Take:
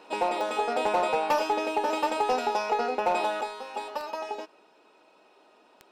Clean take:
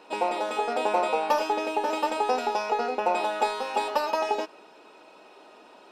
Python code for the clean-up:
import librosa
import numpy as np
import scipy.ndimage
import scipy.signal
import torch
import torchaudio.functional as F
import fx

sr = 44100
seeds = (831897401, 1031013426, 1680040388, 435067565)

y = fx.fix_declip(x, sr, threshold_db=-18.0)
y = fx.fix_declick_ar(y, sr, threshold=10.0)
y = fx.gain(y, sr, db=fx.steps((0.0, 0.0), (3.41, 8.0)))